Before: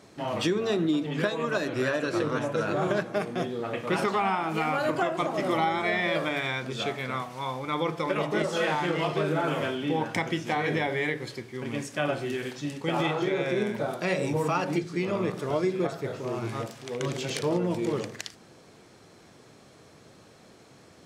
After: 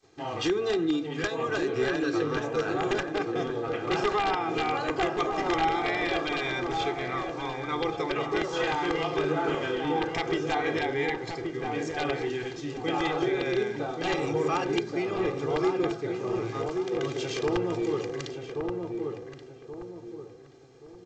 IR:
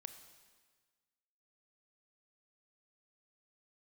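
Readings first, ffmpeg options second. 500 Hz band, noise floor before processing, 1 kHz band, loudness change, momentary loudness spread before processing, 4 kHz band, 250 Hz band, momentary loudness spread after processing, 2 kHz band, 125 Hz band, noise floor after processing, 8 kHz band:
+0.5 dB, -54 dBFS, +0.5 dB, -0.5 dB, 7 LU, 0.0 dB, -0.5 dB, 7 LU, -1.0 dB, -4.0 dB, -47 dBFS, -2.5 dB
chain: -filter_complex "[0:a]aeval=exprs='(mod(6.68*val(0)+1,2)-1)/6.68':c=same,aecho=1:1:2.5:0.65,agate=range=-33dB:threshold=-46dB:ratio=3:detection=peak,asplit=2[a][b];[b]adelay=1128,lowpass=f=1.1k:p=1,volume=-3.5dB,asplit=2[c][d];[d]adelay=1128,lowpass=f=1.1k:p=1,volume=0.39,asplit=2[e][f];[f]adelay=1128,lowpass=f=1.1k:p=1,volume=0.39,asplit=2[g][h];[h]adelay=1128,lowpass=f=1.1k:p=1,volume=0.39,asplit=2[i][j];[j]adelay=1128,lowpass=f=1.1k:p=1,volume=0.39[k];[c][e][g][i][k]amix=inputs=5:normalize=0[l];[a][l]amix=inputs=2:normalize=0,volume=-3dB" -ar 16000 -c:a g722

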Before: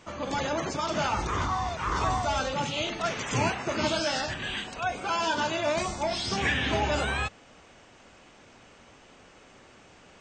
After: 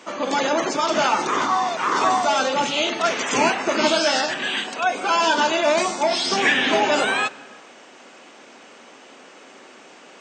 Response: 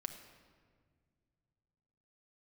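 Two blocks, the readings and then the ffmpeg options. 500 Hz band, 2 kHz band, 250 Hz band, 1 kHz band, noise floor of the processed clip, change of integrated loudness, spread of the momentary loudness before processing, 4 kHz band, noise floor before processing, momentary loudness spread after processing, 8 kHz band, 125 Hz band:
+9.0 dB, +9.0 dB, +7.0 dB, +9.0 dB, -46 dBFS, +8.5 dB, 5 LU, +9.0 dB, -55 dBFS, 5 LU, +9.0 dB, -8.5 dB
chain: -filter_complex "[0:a]highpass=f=230:w=0.5412,highpass=f=230:w=1.3066,asplit=2[a][b];[1:a]atrim=start_sample=2205,afade=t=out:st=0.34:d=0.01,atrim=end_sample=15435,asetrate=29547,aresample=44100[c];[b][c]afir=irnorm=-1:irlink=0,volume=-9dB[d];[a][d]amix=inputs=2:normalize=0,volume=6.5dB"

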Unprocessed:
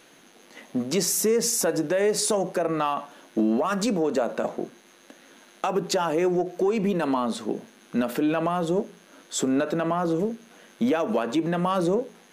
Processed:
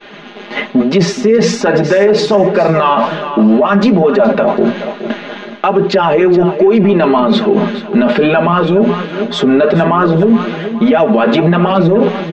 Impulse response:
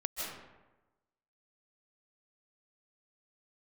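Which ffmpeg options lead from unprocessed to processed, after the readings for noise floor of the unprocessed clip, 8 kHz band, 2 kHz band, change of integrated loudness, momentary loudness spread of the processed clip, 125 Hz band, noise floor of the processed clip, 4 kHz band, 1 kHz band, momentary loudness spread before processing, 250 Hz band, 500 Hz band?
-54 dBFS, n/a, +16.0 dB, +14.0 dB, 7 LU, +17.5 dB, -30 dBFS, +12.5 dB, +14.5 dB, 9 LU, +15.0 dB, +15.0 dB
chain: -filter_complex "[0:a]bandreject=f=60:t=h:w=6,bandreject=f=120:t=h:w=6,bandreject=f=180:t=h:w=6,bandreject=f=240:t=h:w=6,agate=range=-33dB:threshold=-47dB:ratio=3:detection=peak,lowpass=f=3.6k:w=0.5412,lowpass=f=3.6k:w=1.3066,aecho=1:1:4.9:0.75,areverse,acompressor=threshold=-32dB:ratio=6,areverse,flanger=delay=2.2:depth=8.3:regen=47:speed=1.2:shape=triangular,asplit=2[a][b];[b]aecho=0:1:421|842|1263|1684:0.2|0.0738|0.0273|0.0101[c];[a][c]amix=inputs=2:normalize=0,alimiter=level_in=32.5dB:limit=-1dB:release=50:level=0:latency=1,volume=-1dB"

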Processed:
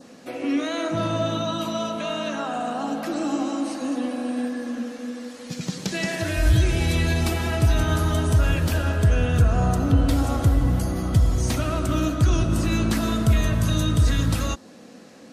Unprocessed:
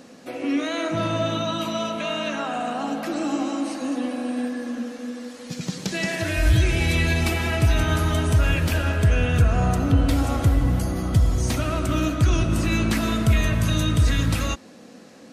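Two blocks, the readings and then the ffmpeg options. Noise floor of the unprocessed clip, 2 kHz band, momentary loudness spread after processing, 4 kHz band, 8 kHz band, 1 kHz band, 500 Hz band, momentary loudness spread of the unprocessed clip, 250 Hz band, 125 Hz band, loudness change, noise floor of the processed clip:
-45 dBFS, -3.5 dB, 9 LU, -1.5 dB, 0.0 dB, -0.5 dB, 0.0 dB, 9 LU, 0.0 dB, 0.0 dB, -0.5 dB, -45 dBFS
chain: -af "adynamicequalizer=threshold=0.00631:dfrequency=2300:dqfactor=1.9:tfrequency=2300:tqfactor=1.9:attack=5:release=100:ratio=0.375:range=3.5:mode=cutabove:tftype=bell"

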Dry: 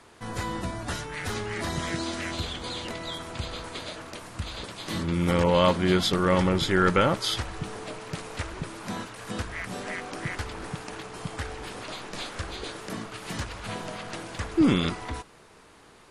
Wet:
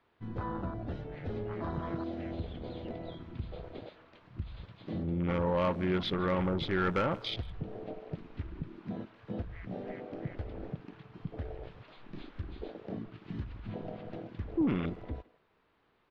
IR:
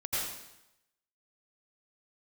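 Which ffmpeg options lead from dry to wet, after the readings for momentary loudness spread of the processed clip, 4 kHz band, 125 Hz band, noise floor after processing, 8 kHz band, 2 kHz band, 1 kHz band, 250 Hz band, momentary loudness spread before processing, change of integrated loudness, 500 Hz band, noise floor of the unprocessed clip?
15 LU, -12.5 dB, -6.0 dB, -71 dBFS, under -30 dB, -11.0 dB, -9.0 dB, -7.0 dB, 15 LU, -7.5 dB, -7.5 dB, -54 dBFS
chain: -filter_complex "[0:a]afwtdn=0.0316,lowpass=f=3.7k:w=0.5412,lowpass=f=3.7k:w=1.3066,asplit=2[a][b];[b]acompressor=threshold=-33dB:ratio=6,volume=3dB[c];[a][c]amix=inputs=2:normalize=0,asoftclip=type=tanh:threshold=-11dB,asplit=2[d][e];[e]adelay=160,highpass=300,lowpass=3.4k,asoftclip=type=hard:threshold=-21.5dB,volume=-19dB[f];[d][f]amix=inputs=2:normalize=0,volume=-9dB"

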